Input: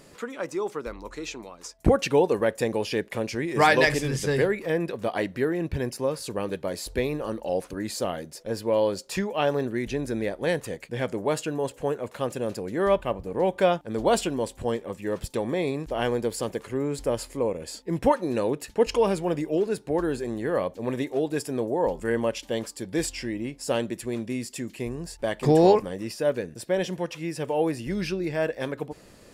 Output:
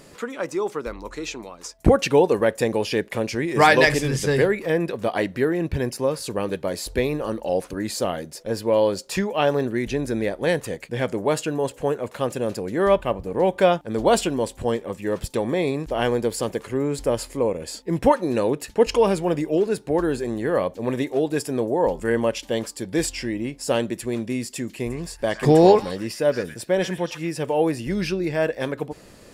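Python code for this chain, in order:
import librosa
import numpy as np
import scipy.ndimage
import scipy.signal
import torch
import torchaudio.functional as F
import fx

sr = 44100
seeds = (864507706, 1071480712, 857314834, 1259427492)

y = fx.echo_stepped(x, sr, ms=115, hz=1700.0, octaves=1.4, feedback_pct=70, wet_db=-4.5, at=(24.89, 27.3), fade=0.02)
y = F.gain(torch.from_numpy(y), 4.0).numpy()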